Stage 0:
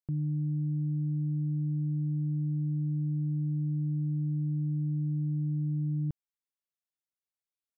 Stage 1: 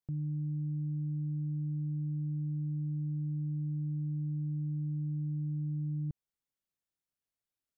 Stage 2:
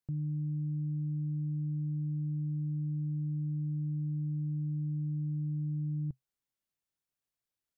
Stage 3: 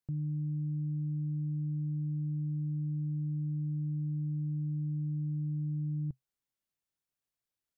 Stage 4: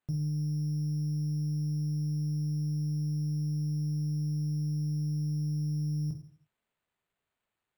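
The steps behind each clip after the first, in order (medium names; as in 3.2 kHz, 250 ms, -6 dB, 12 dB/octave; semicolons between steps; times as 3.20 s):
bass shelf 360 Hz +9 dB; peak limiter -30 dBFS, peak gain reduction 11 dB; trim -1 dB
peaking EQ 130 Hz +3 dB 0.24 oct
no audible change
tracing distortion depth 0.1 ms; on a send at -2 dB: reverberation RT60 0.50 s, pre-delay 4 ms; on the sum: careless resampling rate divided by 8×, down none, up hold; trim +2 dB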